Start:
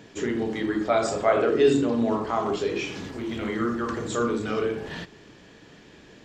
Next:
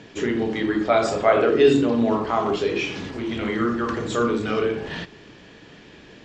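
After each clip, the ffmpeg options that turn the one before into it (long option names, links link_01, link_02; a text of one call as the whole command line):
ffmpeg -i in.wav -af "lowpass=6200,equalizer=frequency=2700:width=1.5:gain=2.5,volume=3.5dB" out.wav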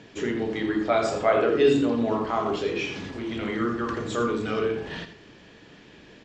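ffmpeg -i in.wav -af "aecho=1:1:83:0.282,volume=-4dB" out.wav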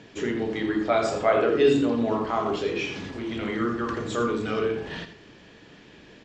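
ffmpeg -i in.wav -af anull out.wav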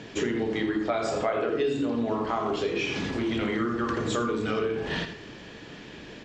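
ffmpeg -i in.wav -af "bandreject=frequency=94.46:width_type=h:width=4,bandreject=frequency=188.92:width_type=h:width=4,bandreject=frequency=283.38:width_type=h:width=4,bandreject=frequency=377.84:width_type=h:width=4,bandreject=frequency=472.3:width_type=h:width=4,bandreject=frequency=566.76:width_type=h:width=4,bandreject=frequency=661.22:width_type=h:width=4,bandreject=frequency=755.68:width_type=h:width=4,bandreject=frequency=850.14:width_type=h:width=4,bandreject=frequency=944.6:width_type=h:width=4,bandreject=frequency=1039.06:width_type=h:width=4,bandreject=frequency=1133.52:width_type=h:width=4,bandreject=frequency=1227.98:width_type=h:width=4,bandreject=frequency=1322.44:width_type=h:width=4,bandreject=frequency=1416.9:width_type=h:width=4,bandreject=frequency=1511.36:width_type=h:width=4,bandreject=frequency=1605.82:width_type=h:width=4,bandreject=frequency=1700.28:width_type=h:width=4,bandreject=frequency=1794.74:width_type=h:width=4,bandreject=frequency=1889.2:width_type=h:width=4,bandreject=frequency=1983.66:width_type=h:width=4,bandreject=frequency=2078.12:width_type=h:width=4,bandreject=frequency=2172.58:width_type=h:width=4,bandreject=frequency=2267.04:width_type=h:width=4,bandreject=frequency=2361.5:width_type=h:width=4,bandreject=frequency=2455.96:width_type=h:width=4,bandreject=frequency=2550.42:width_type=h:width=4,bandreject=frequency=2644.88:width_type=h:width=4,bandreject=frequency=2739.34:width_type=h:width=4,bandreject=frequency=2833.8:width_type=h:width=4,acompressor=threshold=-31dB:ratio=6,volume=6.5dB" out.wav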